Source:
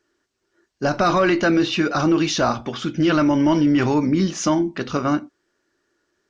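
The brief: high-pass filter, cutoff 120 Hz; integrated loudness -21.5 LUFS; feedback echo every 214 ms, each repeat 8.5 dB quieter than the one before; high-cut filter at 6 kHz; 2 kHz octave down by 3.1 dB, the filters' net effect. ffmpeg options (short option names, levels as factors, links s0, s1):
-af "highpass=120,lowpass=6000,equalizer=f=2000:t=o:g=-4.5,aecho=1:1:214|428|642|856:0.376|0.143|0.0543|0.0206,volume=0.794"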